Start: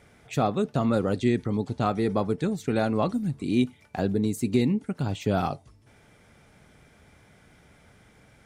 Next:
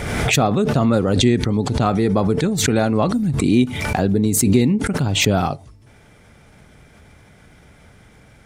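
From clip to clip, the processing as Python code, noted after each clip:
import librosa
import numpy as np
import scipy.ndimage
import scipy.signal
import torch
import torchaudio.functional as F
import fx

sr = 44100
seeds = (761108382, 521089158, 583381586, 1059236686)

y = fx.low_shelf(x, sr, hz=92.0, db=6.0)
y = fx.pre_swell(y, sr, db_per_s=34.0)
y = F.gain(torch.from_numpy(y), 6.0).numpy()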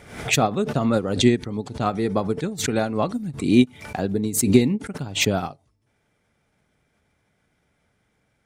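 y = fx.low_shelf(x, sr, hz=100.0, db=-8.0)
y = fx.upward_expand(y, sr, threshold_db=-27.0, expansion=2.5)
y = F.gain(torch.from_numpy(y), 3.5).numpy()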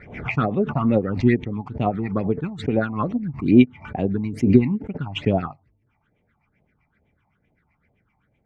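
y = fx.filter_lfo_lowpass(x, sr, shape='sine', hz=7.8, low_hz=730.0, high_hz=2400.0, q=2.0)
y = fx.phaser_stages(y, sr, stages=8, low_hz=450.0, high_hz=1500.0, hz=2.3, feedback_pct=25)
y = F.gain(torch.from_numpy(y), 2.0).numpy()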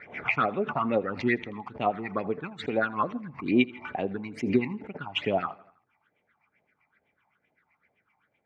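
y = fx.bandpass_q(x, sr, hz=1800.0, q=0.52)
y = fx.echo_feedback(y, sr, ms=82, feedback_pct=56, wet_db=-22)
y = F.gain(torch.from_numpy(y), 1.5).numpy()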